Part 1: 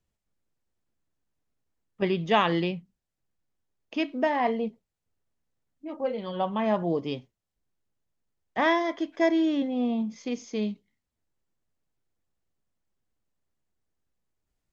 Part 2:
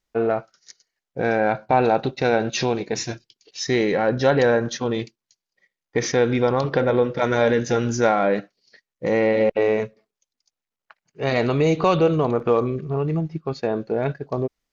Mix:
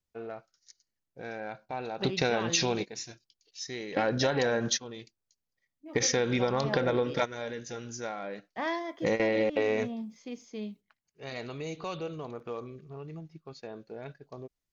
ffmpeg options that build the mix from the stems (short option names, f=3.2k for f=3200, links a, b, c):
-filter_complex "[0:a]volume=-9dB,asplit=2[a][b];[1:a]highshelf=f=2.9k:g=12,volume=-3.5dB[c];[b]apad=whole_len=649560[d];[c][d]sidechaingate=range=-16dB:threshold=-49dB:ratio=16:detection=peak[e];[a][e]amix=inputs=2:normalize=0,acompressor=threshold=-23dB:ratio=12"